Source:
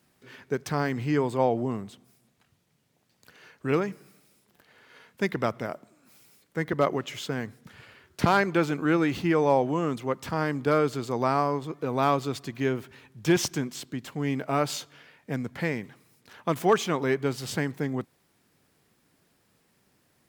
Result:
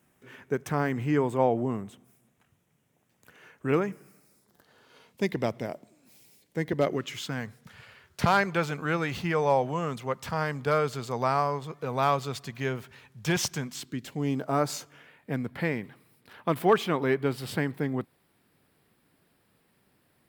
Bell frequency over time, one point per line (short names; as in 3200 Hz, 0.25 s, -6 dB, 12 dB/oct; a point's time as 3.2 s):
bell -11.5 dB 0.6 oct
3.87 s 4500 Hz
5.38 s 1300 Hz
6.75 s 1300 Hz
7.47 s 310 Hz
13.62 s 310 Hz
14.27 s 1800 Hz
15.3 s 6400 Hz